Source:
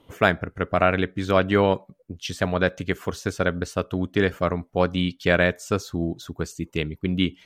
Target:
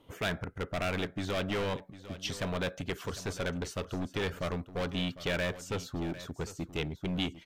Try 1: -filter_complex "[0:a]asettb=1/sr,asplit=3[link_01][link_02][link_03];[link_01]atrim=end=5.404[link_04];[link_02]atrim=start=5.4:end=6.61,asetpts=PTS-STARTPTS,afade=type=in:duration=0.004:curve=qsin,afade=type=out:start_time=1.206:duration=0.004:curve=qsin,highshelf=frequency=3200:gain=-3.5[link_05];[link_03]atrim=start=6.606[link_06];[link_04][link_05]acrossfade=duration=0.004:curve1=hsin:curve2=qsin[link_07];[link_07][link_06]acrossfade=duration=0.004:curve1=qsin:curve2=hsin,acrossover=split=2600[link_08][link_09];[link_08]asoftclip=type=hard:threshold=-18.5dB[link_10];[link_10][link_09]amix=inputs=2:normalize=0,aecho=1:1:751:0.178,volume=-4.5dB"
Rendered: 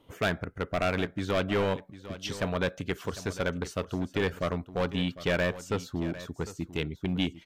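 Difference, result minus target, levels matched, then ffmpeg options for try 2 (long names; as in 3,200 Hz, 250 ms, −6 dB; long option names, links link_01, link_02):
hard clipping: distortion −5 dB
-filter_complex "[0:a]asettb=1/sr,asplit=3[link_01][link_02][link_03];[link_01]atrim=end=5.404[link_04];[link_02]atrim=start=5.4:end=6.61,asetpts=PTS-STARTPTS,afade=type=in:duration=0.004:curve=qsin,afade=type=out:start_time=1.206:duration=0.004:curve=qsin,highshelf=frequency=3200:gain=-3.5[link_05];[link_03]atrim=start=6.606[link_06];[link_04][link_05]acrossfade=duration=0.004:curve1=hsin:curve2=qsin[link_07];[link_07][link_06]acrossfade=duration=0.004:curve1=qsin:curve2=hsin,acrossover=split=2600[link_08][link_09];[link_08]asoftclip=type=hard:threshold=-26dB[link_10];[link_10][link_09]amix=inputs=2:normalize=0,aecho=1:1:751:0.178,volume=-4.5dB"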